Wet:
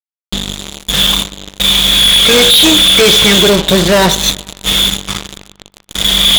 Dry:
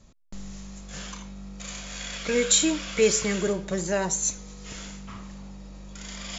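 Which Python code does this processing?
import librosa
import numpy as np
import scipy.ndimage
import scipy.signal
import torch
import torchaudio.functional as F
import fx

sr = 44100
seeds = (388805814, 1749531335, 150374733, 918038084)

y = fx.ladder_lowpass(x, sr, hz=3600.0, resonance_pct=90)
y = fx.fuzz(y, sr, gain_db=48.0, gate_db=-47.0)
y = fx.echo_wet_lowpass(y, sr, ms=143, feedback_pct=45, hz=2100.0, wet_db=-20.5)
y = F.gain(torch.from_numpy(y), 8.0).numpy()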